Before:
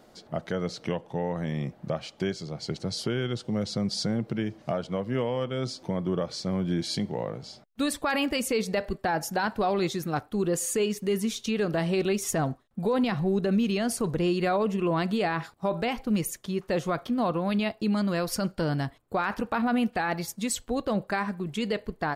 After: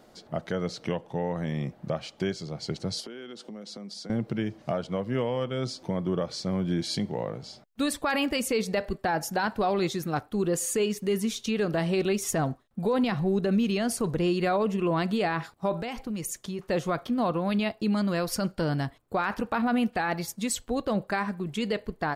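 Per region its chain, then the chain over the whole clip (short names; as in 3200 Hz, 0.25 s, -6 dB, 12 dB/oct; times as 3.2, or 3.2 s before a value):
3–4.1 steep high-pass 190 Hz + compressor, threshold -38 dBFS
15.76–16.59 dynamic EQ 7000 Hz, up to +6 dB, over -48 dBFS, Q 1.1 + compressor 4:1, threshold -30 dBFS
whole clip: dry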